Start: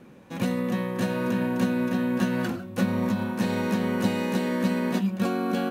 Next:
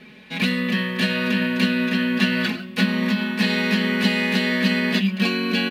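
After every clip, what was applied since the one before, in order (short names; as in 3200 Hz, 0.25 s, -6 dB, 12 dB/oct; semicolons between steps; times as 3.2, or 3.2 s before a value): band shelf 2900 Hz +14.5 dB; comb 4.7 ms, depth 95%; gain -1 dB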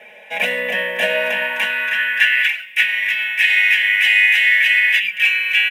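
high-pass sweep 590 Hz -> 2100 Hz, 1.12–2.46; fixed phaser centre 1200 Hz, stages 6; gain +7 dB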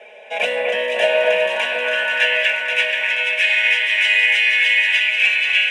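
speaker cabinet 330–8900 Hz, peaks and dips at 430 Hz +7 dB, 650 Hz +5 dB, 1900 Hz -8 dB; echo with dull and thin repeats by turns 0.241 s, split 2400 Hz, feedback 82%, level -4 dB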